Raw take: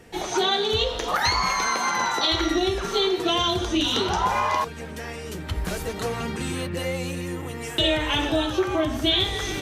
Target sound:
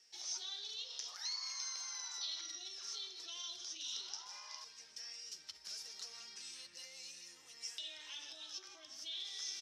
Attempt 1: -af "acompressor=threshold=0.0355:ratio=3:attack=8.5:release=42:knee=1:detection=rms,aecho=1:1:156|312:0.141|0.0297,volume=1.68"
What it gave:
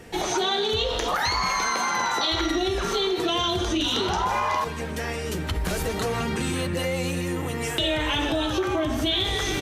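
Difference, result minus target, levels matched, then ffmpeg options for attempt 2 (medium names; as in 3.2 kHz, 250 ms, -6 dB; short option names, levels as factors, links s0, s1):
4 kHz band -3.0 dB
-af "acompressor=threshold=0.0355:ratio=3:attack=8.5:release=42:knee=1:detection=rms,bandpass=f=5300:t=q:w=9.2:csg=0,aecho=1:1:156|312:0.141|0.0297,volume=1.68"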